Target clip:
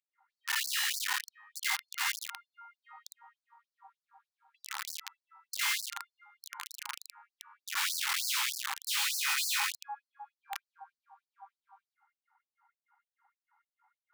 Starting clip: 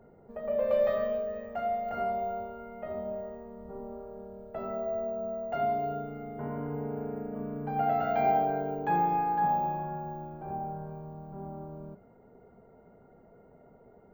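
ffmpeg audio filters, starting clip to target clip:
-af "aemphasis=mode=reproduction:type=75fm,aeval=exprs='(mod(21.1*val(0)+1,2)-1)/21.1':c=same,afftfilt=real='re*gte(b*sr/1024,750*pow(4300/750,0.5+0.5*sin(2*PI*3.3*pts/sr)))':imag='im*gte(b*sr/1024,750*pow(4300/750,0.5+0.5*sin(2*PI*3.3*pts/sr)))':win_size=1024:overlap=0.75,volume=1dB"

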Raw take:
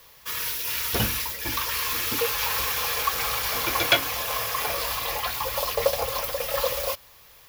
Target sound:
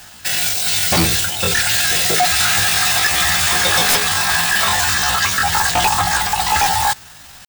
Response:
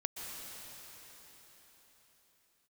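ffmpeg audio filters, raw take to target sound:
-af "asetrate=68011,aresample=44100,atempo=0.64842,aeval=exprs='0.596*sin(PI/2*6.31*val(0)/0.596)':c=same,volume=-5.5dB"

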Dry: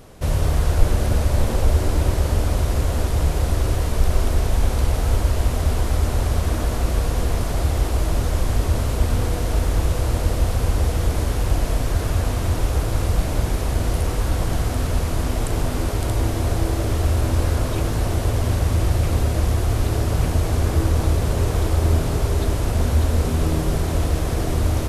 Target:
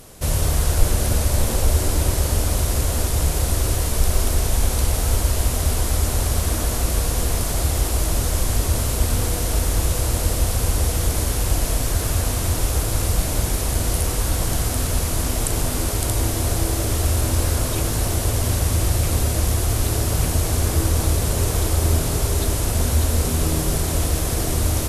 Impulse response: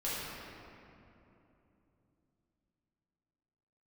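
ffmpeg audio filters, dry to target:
-af "equalizer=f=11k:w=0.35:g=13,volume=-1dB"

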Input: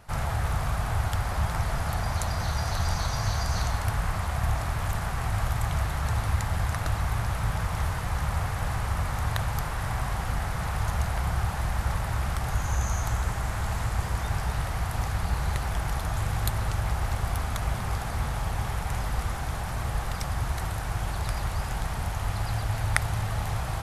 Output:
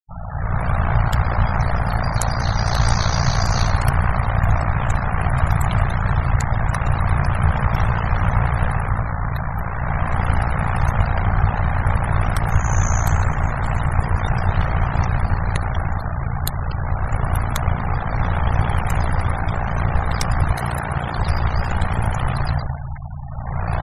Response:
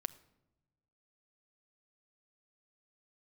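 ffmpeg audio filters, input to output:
-filter_complex "[0:a]asettb=1/sr,asplit=3[a][b][c];[a]atrim=end=20.514[d];[b]atrim=start=20.51:end=21.17,asetpts=PTS-STARTPTS,afade=t=in:d=0.004:c=qsin,afade=t=out:st=0.656:d=0.004:c=qsin,highpass=f=89:w=0.5412,highpass=f=89:w=1.3066[e];[c]atrim=start=21.166[f];[d][e]acrossfade=d=0.004:c1=hsin:c2=qsin[g];[g][f]acrossfade=d=0.004:c1=qsin:c2=hsin,aecho=1:1:446|892:0.0794|0.023,dynaudnorm=f=140:g=7:m=15dB,aeval=exprs='val(0)*sin(2*PI*29*n/s)':c=same,afftfilt=real='re*gte(hypot(re,im),0.0398)':imag='im*gte(hypot(re,im),0.0398)':win_size=1024:overlap=0.75"

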